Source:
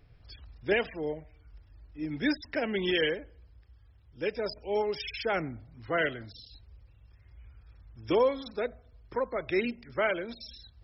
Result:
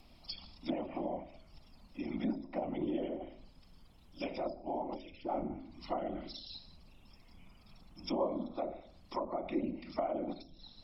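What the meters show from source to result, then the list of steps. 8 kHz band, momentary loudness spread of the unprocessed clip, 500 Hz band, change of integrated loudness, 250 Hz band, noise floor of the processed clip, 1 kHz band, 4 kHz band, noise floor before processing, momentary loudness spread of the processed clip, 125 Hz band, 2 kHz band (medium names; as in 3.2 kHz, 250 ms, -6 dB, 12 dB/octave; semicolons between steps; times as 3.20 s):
no reading, 17 LU, -8.5 dB, -8.0 dB, -3.0 dB, -61 dBFS, -3.5 dB, -11.0 dB, -59 dBFS, 13 LU, -6.5 dB, -21.0 dB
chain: in parallel at -2.5 dB: compressor with a negative ratio -36 dBFS, ratio -1; on the sum: tilt EQ +2.5 dB/octave; gated-style reverb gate 230 ms falling, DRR 9.5 dB; whisper effect; static phaser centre 440 Hz, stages 6; de-hum 53.68 Hz, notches 12; added noise brown -60 dBFS; low-pass that closes with the level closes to 630 Hz, closed at -30.5 dBFS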